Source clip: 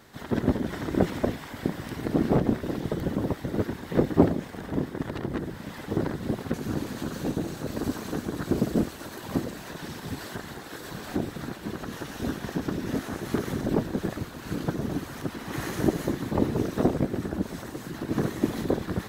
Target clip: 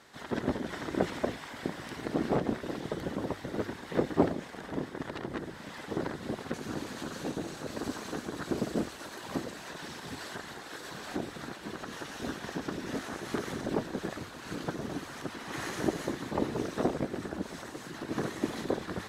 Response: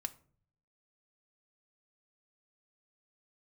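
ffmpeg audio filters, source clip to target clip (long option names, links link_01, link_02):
-af "lowpass=9600,lowshelf=frequency=320:gain=-10.5,bandreject=frequency=50:width_type=h:width=6,bandreject=frequency=100:width_type=h:width=6,volume=-1dB"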